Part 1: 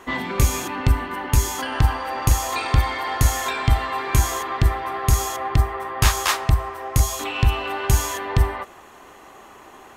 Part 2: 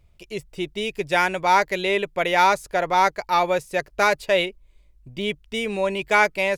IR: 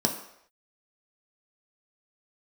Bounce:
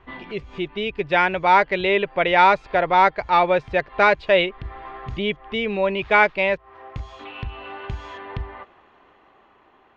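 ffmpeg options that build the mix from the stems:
-filter_complex "[0:a]acompressor=threshold=0.141:ratio=6,volume=0.282[s0];[1:a]volume=1.12,asplit=2[s1][s2];[s2]apad=whole_len=439236[s3];[s0][s3]sidechaincompress=threshold=0.0141:ratio=8:attack=5:release=178[s4];[s4][s1]amix=inputs=2:normalize=0,lowpass=f=3600:w=0.5412,lowpass=f=3600:w=1.3066,dynaudnorm=f=280:g=9:m=1.5"

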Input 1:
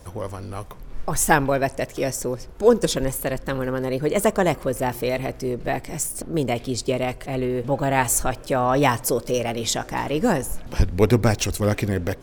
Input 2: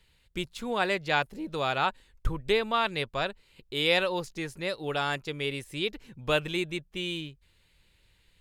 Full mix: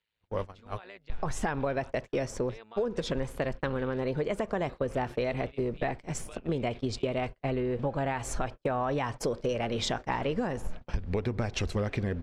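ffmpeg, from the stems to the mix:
-filter_complex "[0:a]alimiter=limit=0.266:level=0:latency=1:release=161,agate=range=0.00501:threshold=0.0355:ratio=16:detection=peak,adelay=150,volume=1.12[s0];[1:a]highpass=f=330:p=1,alimiter=limit=0.0841:level=0:latency=1:release=33,tremolo=f=110:d=0.75,volume=0.237[s1];[s0][s1]amix=inputs=2:normalize=0,lowpass=3700,equalizer=f=310:w=7.7:g=-5.5,acompressor=threshold=0.0447:ratio=6"

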